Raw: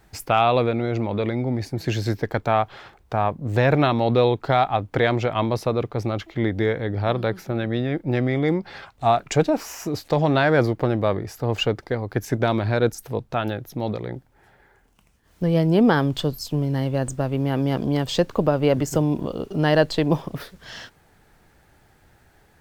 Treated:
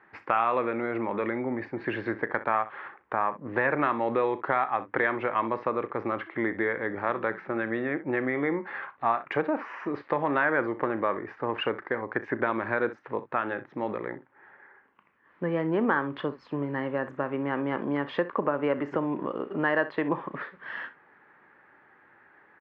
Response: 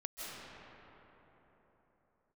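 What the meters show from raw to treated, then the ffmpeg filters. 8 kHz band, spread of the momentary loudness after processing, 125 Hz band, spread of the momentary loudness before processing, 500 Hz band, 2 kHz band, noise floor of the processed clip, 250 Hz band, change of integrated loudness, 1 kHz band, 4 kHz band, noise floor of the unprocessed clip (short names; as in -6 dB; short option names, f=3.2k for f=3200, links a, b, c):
under -35 dB, 8 LU, -17.5 dB, 10 LU, -7.0 dB, 0.0 dB, -60 dBFS, -7.5 dB, -6.5 dB, -4.0 dB, -14.0 dB, -58 dBFS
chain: -af "highpass=370,equalizer=f=460:t=q:w=4:g=-4,equalizer=f=690:t=q:w=4:g=-9,equalizer=f=1.1k:t=q:w=4:g=5,equalizer=f=1.8k:t=q:w=4:g=5,lowpass=f=2.1k:w=0.5412,lowpass=f=2.1k:w=1.3066,aecho=1:1:35|63:0.168|0.15,acompressor=threshold=-28dB:ratio=2,volume=2.5dB"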